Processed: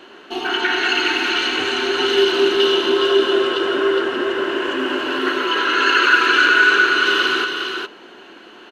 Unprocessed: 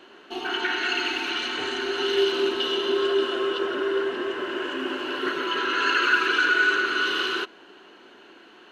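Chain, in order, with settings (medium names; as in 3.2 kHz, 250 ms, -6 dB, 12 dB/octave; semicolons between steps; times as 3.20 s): 5.19–6.30 s: peaking EQ 86 Hz -13.5 dB 1.5 oct; delay 412 ms -5.5 dB; trim +7 dB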